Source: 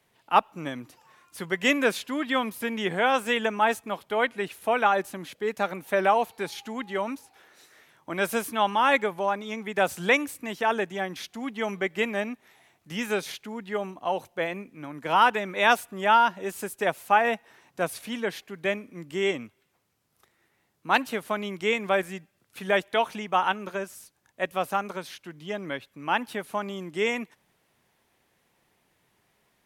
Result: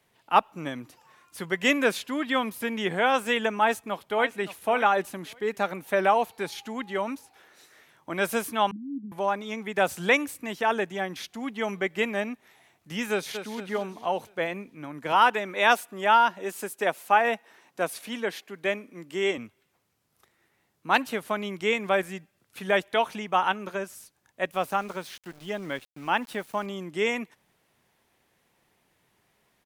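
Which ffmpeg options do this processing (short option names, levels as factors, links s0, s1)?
-filter_complex "[0:a]asplit=2[s0][s1];[s1]afade=t=in:st=3.6:d=0.01,afade=t=out:st=4.62:d=0.01,aecho=0:1:570|1140:0.199526|0.0299289[s2];[s0][s2]amix=inputs=2:normalize=0,asettb=1/sr,asplit=3[s3][s4][s5];[s3]atrim=end=8.714[s6];[s4]atrim=start=8.71:end=9.12,asetpts=PTS-STARTPTS,afade=t=in:d=0.004:c=qsin,afade=t=out:st=0.406:d=0.004:c=qsin,asuperpass=centerf=230:order=12:qfactor=1.6[s7];[s5]atrim=start=9.116[s8];[s6][s7]acrossfade=d=0.004:c1=hsin:c2=qsin[s9];[s9][s8]acrossfade=d=0.004:c1=qsin:c2=hsin,asplit=2[s10][s11];[s11]afade=t=in:st=13.11:d=0.01,afade=t=out:st=13.56:d=0.01,aecho=0:1:230|460|690|920|1150|1380:0.354813|0.177407|0.0887033|0.0443517|0.0221758|0.0110879[s12];[s10][s12]amix=inputs=2:normalize=0,asettb=1/sr,asplit=3[s13][s14][s15];[s13]atrim=end=15.124[s16];[s14]atrim=start=15.12:end=19.38,asetpts=PTS-STARTPTS,afade=t=in:d=0.004:c=qsin,afade=t=out:st=4.256:d=0.004:c=qsin,highpass=210[s17];[s15]atrim=start=19.376[s18];[s16][s17]acrossfade=d=0.004:c1=hsin:c2=qsin[s19];[s19][s18]acrossfade=d=0.004:c1=qsin:c2=hsin,asettb=1/sr,asplit=3[s20][s21][s22];[s20]atrim=end=24.514[s23];[s21]atrim=start=24.51:end=26.66,asetpts=PTS-STARTPTS,afade=t=in:d=0.004:c=qsin,afade=t=out:st=2.146:d=0.004:c=qsin,aeval=exprs='val(0)*gte(abs(val(0)),0.00501)':c=same[s24];[s22]atrim=start=26.656[s25];[s23][s24]acrossfade=d=0.004:c1=hsin:c2=qsin[s26];[s26][s25]acrossfade=d=0.004:c1=qsin:c2=hsin"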